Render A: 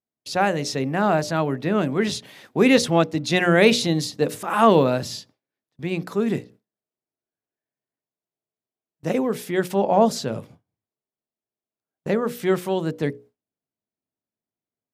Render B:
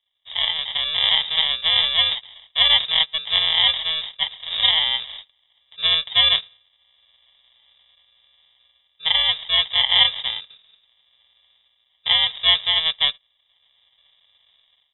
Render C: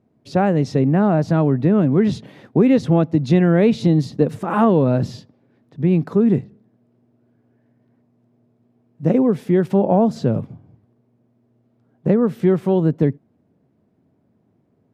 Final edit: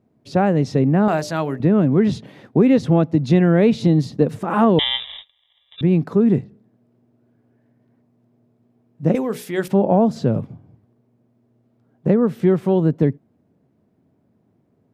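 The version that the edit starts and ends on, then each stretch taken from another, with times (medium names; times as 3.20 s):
C
1.08–1.60 s: from A
4.79–5.81 s: from B
9.15–9.68 s: from A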